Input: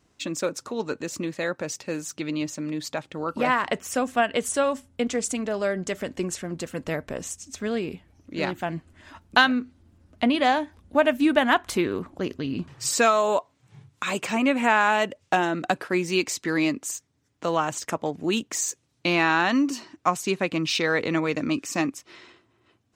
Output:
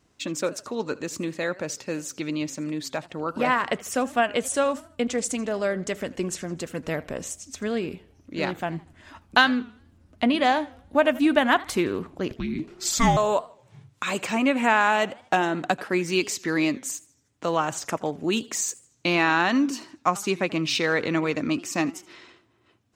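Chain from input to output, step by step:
0:12.31–0:13.17: frequency shifter −490 Hz
feedback echo with a swinging delay time 80 ms, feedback 41%, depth 191 cents, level −20.5 dB

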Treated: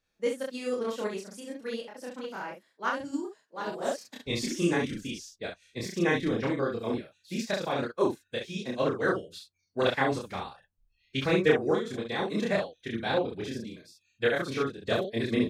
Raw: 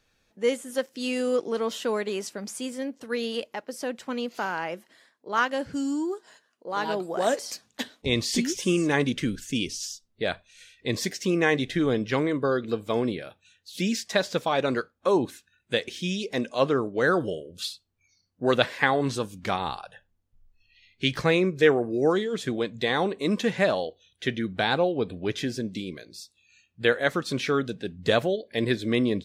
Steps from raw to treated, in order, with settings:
notch filter 3,000 Hz, Q 29
loudspeakers that aren't time-aligned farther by 18 metres 0 dB, 43 metres −3 dB
phase-vocoder stretch with locked phases 0.53×
expander for the loud parts 1.5 to 1, over −33 dBFS
level −3 dB

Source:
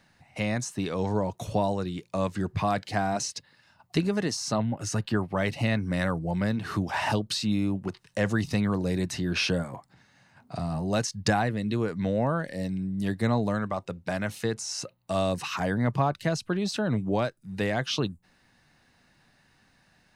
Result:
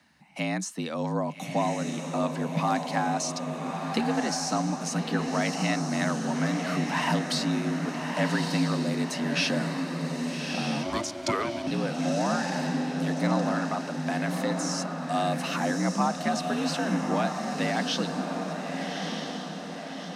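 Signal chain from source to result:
parametric band 320 Hz −8.5 dB 0.64 octaves
feedback delay with all-pass diffusion 1,223 ms, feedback 54%, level −4 dB
0:10.83–0:11.67: ring modulation 400 Hz
frequency shifter +62 Hz

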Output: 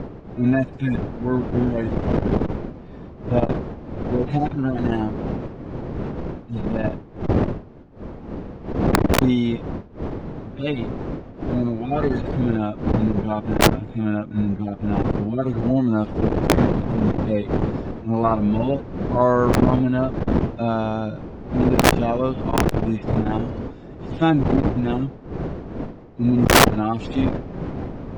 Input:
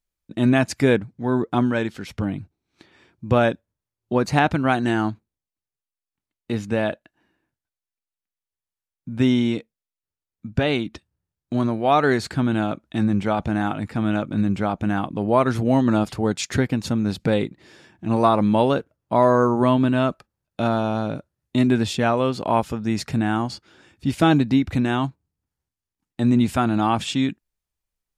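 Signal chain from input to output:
harmonic-percussive split with one part muted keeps harmonic
wind on the microphone 330 Hz −20 dBFS
low-pass filter 6,800 Hz 24 dB per octave
wrap-around overflow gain 3 dB
saturating transformer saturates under 220 Hz

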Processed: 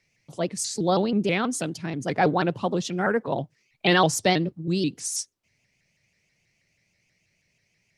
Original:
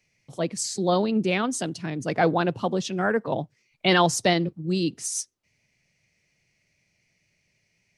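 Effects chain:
pitch modulation by a square or saw wave saw up 6.2 Hz, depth 160 cents

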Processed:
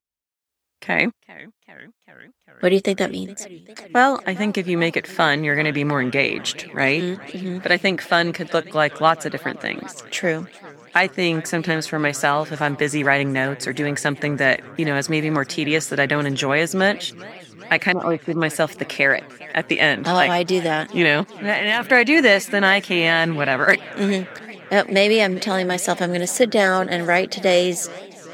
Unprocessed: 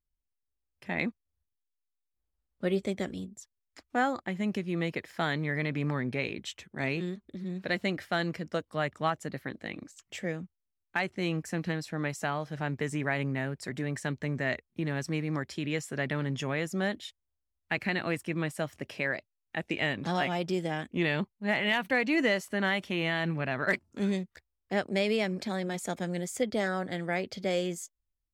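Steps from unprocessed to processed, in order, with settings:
0:21.21–0:21.81: downward compressor 1.5 to 1, threshold −38 dBFS, peak gain reduction 5.5 dB
high-pass filter 360 Hz 6 dB per octave
automatic gain control gain up to 14.5 dB
0:17.92–0:18.42: linear-phase brick-wall low-pass 1,400 Hz
feedback echo with a swinging delay time 401 ms, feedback 74%, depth 183 cents, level −22 dB
level +1.5 dB

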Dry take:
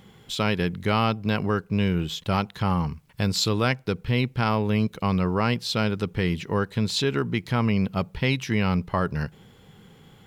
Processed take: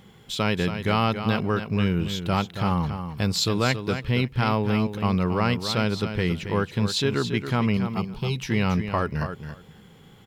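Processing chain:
0:07.77–0:08.36: phaser with its sweep stopped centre 380 Hz, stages 8
repeating echo 277 ms, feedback 15%, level −9 dB

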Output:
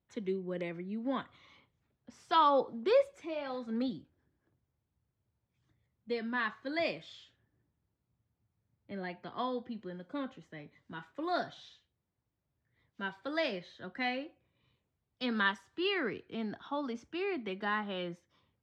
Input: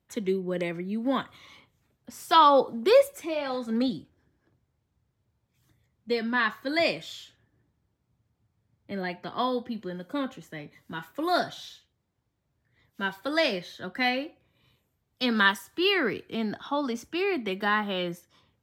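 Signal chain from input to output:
high-frequency loss of the air 120 metres
level −7.5 dB

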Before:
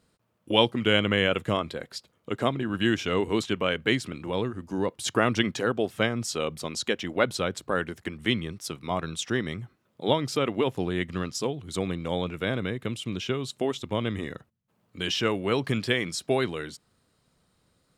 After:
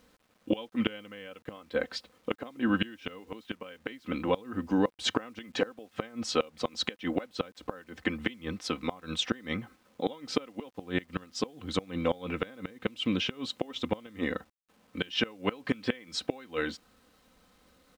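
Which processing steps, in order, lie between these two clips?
low-pass filter 3,500 Hz 12 dB per octave
parametric band 120 Hz −6.5 dB 1.3 octaves
comb filter 3.9 ms, depth 63%
in parallel at −1 dB: downward compressor 12 to 1, threshold −30 dBFS, peak gain reduction 16.5 dB
on the sum: gate with flip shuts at −14 dBFS, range −24 dB
bit reduction 11 bits

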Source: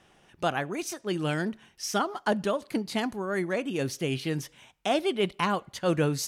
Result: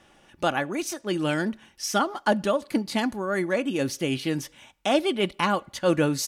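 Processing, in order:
comb filter 3.5 ms, depth 35%
level +3 dB

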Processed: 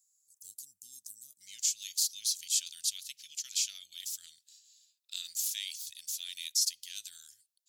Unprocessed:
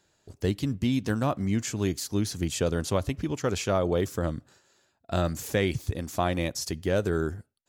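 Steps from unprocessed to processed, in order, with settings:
inverse Chebyshev high-pass filter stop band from 2,300 Hz, stop band 60 dB, from 0:01.40 stop band from 1,100 Hz
level +6 dB

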